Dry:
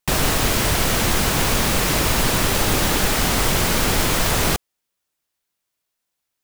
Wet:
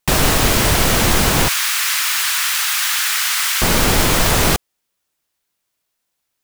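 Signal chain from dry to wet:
0:01.48–0:03.62: high-pass filter 1,300 Hz 24 dB per octave
level +4.5 dB

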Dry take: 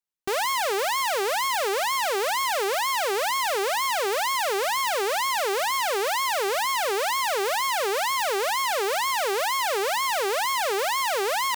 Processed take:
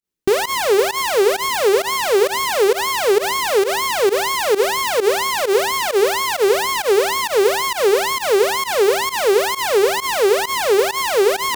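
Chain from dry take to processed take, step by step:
low shelf with overshoot 520 Hz +8.5 dB, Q 1.5
hum removal 131.1 Hz, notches 11
fake sidechain pumping 132 BPM, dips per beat 1, −19 dB, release 86 ms
level +6 dB

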